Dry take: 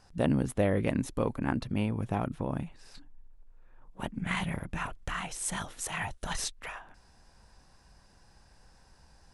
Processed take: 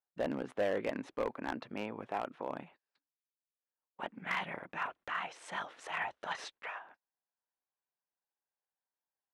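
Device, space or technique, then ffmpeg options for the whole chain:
walkie-talkie: -filter_complex "[0:a]asettb=1/sr,asplit=3[link_01][link_02][link_03];[link_01]atrim=end=2.074[link_04];[link_02]atrim=start=2.07:end=2.5,asetpts=PTS-STARTPTS,afade=type=in:duration=0.004:curve=qsin,afade=type=out:start_time=0.426:duration=0.004:curve=qsin,highpass=frequency=250:poles=1[link_05];[link_03]atrim=start=2.496[link_06];[link_04][link_05]acrossfade=duration=0.004:curve1=hsin:curve2=qsin[link_07];[link_07][link_06]acrossfade=duration=0.004:curve1=qsin:curve2=hsin,highpass=440,lowpass=2600,asoftclip=type=hard:threshold=-26.5dB,agate=range=-34dB:threshold=-56dB:ratio=16:detection=peak"

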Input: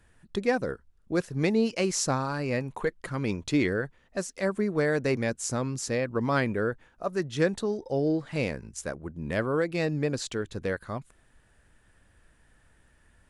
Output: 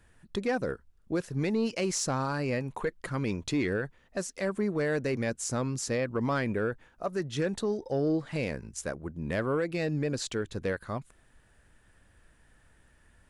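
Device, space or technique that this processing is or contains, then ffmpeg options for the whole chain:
soft clipper into limiter: -af "asoftclip=type=tanh:threshold=-15.5dB,alimiter=limit=-21dB:level=0:latency=1:release=74"

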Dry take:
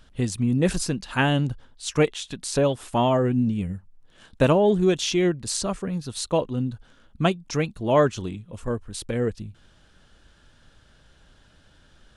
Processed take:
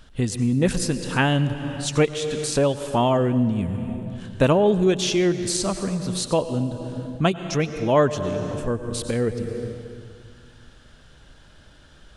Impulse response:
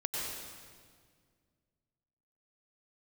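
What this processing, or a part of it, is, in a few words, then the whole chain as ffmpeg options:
ducked reverb: -filter_complex "[0:a]asplit=3[link_01][link_02][link_03];[1:a]atrim=start_sample=2205[link_04];[link_02][link_04]afir=irnorm=-1:irlink=0[link_05];[link_03]apad=whole_len=536511[link_06];[link_05][link_06]sidechaincompress=threshold=-31dB:ratio=8:attack=32:release=369,volume=-3.5dB[link_07];[link_01][link_07]amix=inputs=2:normalize=0"

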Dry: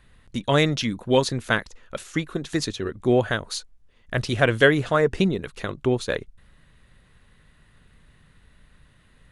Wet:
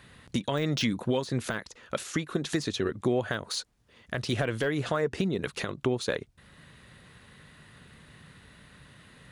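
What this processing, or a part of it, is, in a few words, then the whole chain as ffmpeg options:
broadcast voice chain: -af "highpass=100,deesser=0.7,acompressor=threshold=-26dB:ratio=4,equalizer=frequency=4700:width_type=o:width=0.77:gain=2,alimiter=limit=-22.5dB:level=0:latency=1:release=470,volume=6.5dB"

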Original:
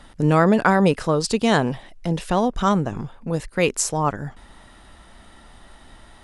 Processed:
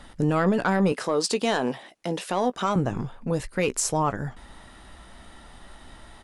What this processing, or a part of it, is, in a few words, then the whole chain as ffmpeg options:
soft clipper into limiter: -filter_complex "[0:a]asettb=1/sr,asplit=3[link_01][link_02][link_03];[link_01]atrim=end=0.924[link_04];[link_02]atrim=start=0.92:end=2.76,asetpts=PTS-STARTPTS,afade=type=in:duration=0.004:curve=qsin,afade=type=out:start_time=1.836:duration=0.004:curve=qsin,highpass=280[link_05];[link_03]atrim=start=2.756[link_06];[link_04][link_05]acrossfade=duration=0.004:curve1=hsin:curve2=qsin[link_07];[link_07][link_06]acrossfade=duration=0.004:curve1=qsin:curve2=hsin,asoftclip=type=tanh:threshold=-8dB,alimiter=limit=-14.5dB:level=0:latency=1:release=56,asplit=2[link_08][link_09];[link_09]adelay=16,volume=-12.5dB[link_10];[link_08][link_10]amix=inputs=2:normalize=0"

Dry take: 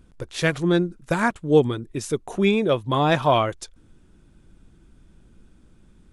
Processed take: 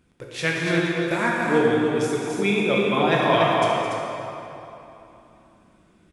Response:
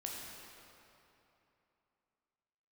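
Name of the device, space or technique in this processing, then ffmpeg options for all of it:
stadium PA: -filter_complex "[0:a]highpass=frequency=180:poles=1,equalizer=frequency=2200:width_type=o:width=0.72:gain=6,aecho=1:1:212.8|288.6:0.282|0.562[link_01];[1:a]atrim=start_sample=2205[link_02];[link_01][link_02]afir=irnorm=-1:irlink=0"

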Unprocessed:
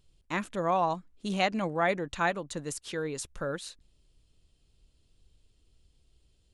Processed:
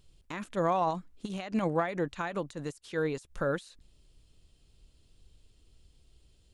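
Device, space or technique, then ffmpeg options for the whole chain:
de-esser from a sidechain: -filter_complex "[0:a]asplit=2[link_01][link_02];[link_02]highpass=5500,apad=whole_len=288256[link_03];[link_01][link_03]sidechaincompress=threshold=-57dB:ratio=10:attack=4.3:release=61,volume=4dB"

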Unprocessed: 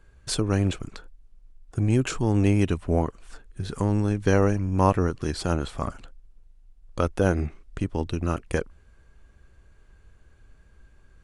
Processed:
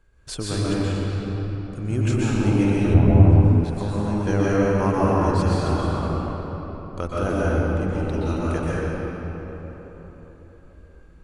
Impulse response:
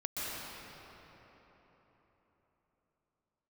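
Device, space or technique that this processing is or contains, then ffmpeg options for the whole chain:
cathedral: -filter_complex "[1:a]atrim=start_sample=2205[link_01];[0:a][link_01]afir=irnorm=-1:irlink=0,asettb=1/sr,asplit=3[link_02][link_03][link_04];[link_02]atrim=end=2.944[link_05];[link_03]atrim=start=2.94:end=3.64,asetpts=PTS-STARTPTS,afade=type=in:duration=0.004:curve=qsin,afade=type=out:start_time=0.696:duration=0.004:curve=qsin,bass=frequency=250:gain=9,treble=frequency=4000:gain=-8[link_06];[link_04]atrim=start=3.636[link_07];[link_05][link_06]acrossfade=duration=0.004:curve1=hsin:curve2=qsin[link_08];[link_08][link_07]acrossfade=duration=0.004:curve1=qsin:curve2=hsin,volume=-2dB"

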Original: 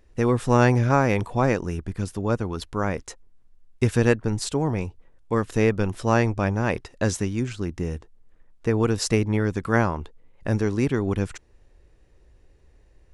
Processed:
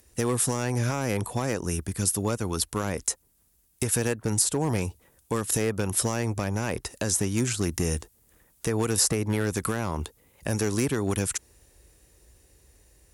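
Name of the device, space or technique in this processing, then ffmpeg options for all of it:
FM broadcast chain: -filter_complex "[0:a]highpass=frequency=42:width=0.5412,highpass=frequency=42:width=1.3066,dynaudnorm=framelen=580:gausssize=11:maxgain=11.5dB,acrossover=split=490|1700[link_01][link_02][link_03];[link_01]acompressor=threshold=-22dB:ratio=4[link_04];[link_02]acompressor=threshold=-26dB:ratio=4[link_05];[link_03]acompressor=threshold=-39dB:ratio=4[link_06];[link_04][link_05][link_06]amix=inputs=3:normalize=0,aemphasis=mode=production:type=50fm,alimiter=limit=-15dB:level=0:latency=1:release=183,asoftclip=type=hard:threshold=-18dB,lowpass=frequency=15000:width=0.5412,lowpass=frequency=15000:width=1.3066,aemphasis=mode=production:type=50fm"

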